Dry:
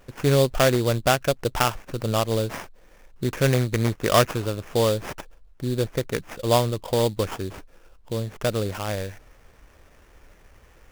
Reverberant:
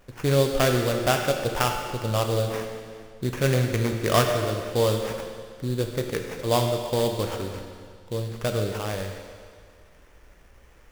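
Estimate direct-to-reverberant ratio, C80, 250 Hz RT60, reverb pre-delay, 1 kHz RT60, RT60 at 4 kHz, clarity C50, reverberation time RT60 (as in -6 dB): 3.0 dB, 6.0 dB, 2.0 s, 12 ms, 2.0 s, 1.9 s, 5.0 dB, 2.0 s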